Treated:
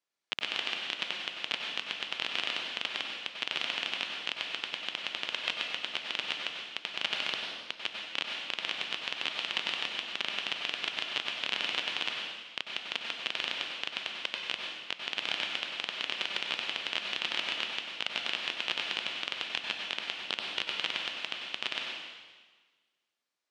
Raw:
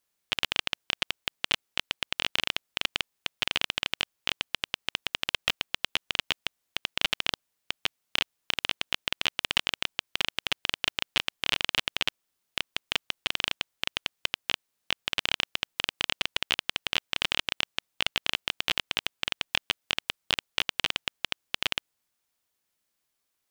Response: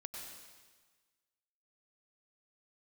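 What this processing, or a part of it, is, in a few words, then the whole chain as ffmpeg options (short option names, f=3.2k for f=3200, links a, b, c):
supermarket ceiling speaker: -filter_complex "[0:a]highpass=210,lowpass=5.5k[a];[1:a]atrim=start_sample=2205[b];[a][b]afir=irnorm=-1:irlink=0"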